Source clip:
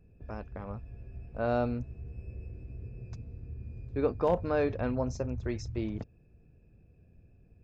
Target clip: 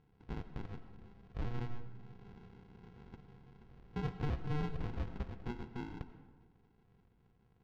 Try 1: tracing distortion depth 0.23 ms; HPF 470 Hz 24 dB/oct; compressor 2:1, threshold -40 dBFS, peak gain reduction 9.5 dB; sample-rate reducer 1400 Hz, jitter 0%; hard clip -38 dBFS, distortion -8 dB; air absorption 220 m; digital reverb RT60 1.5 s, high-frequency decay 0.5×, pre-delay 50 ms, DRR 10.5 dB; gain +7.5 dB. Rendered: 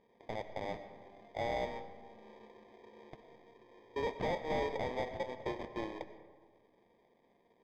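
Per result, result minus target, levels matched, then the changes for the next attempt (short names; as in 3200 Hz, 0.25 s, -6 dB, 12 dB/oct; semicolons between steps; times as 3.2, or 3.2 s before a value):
sample-rate reducer: distortion -10 dB; compressor: peak gain reduction -4 dB
change: sample-rate reducer 600 Hz, jitter 0%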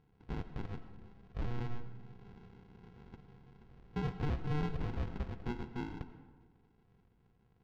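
compressor: peak gain reduction -4 dB
change: compressor 2:1, threshold -48 dBFS, peak gain reduction 13.5 dB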